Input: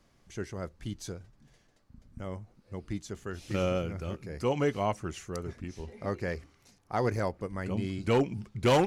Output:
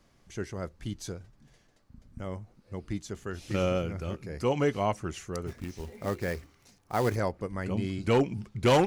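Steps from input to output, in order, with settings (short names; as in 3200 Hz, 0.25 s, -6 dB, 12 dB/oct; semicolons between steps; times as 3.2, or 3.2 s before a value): 5.47–7.16 short-mantissa float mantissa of 2-bit; gain +1.5 dB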